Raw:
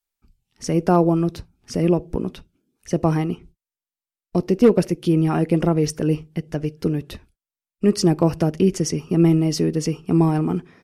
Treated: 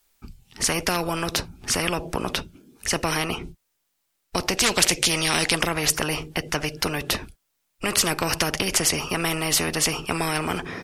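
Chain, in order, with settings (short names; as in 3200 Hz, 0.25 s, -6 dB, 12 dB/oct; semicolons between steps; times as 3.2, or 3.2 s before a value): 4.57–5.55 band shelf 4100 Hz +13 dB 2.3 oct; spectral compressor 4:1; gain +2.5 dB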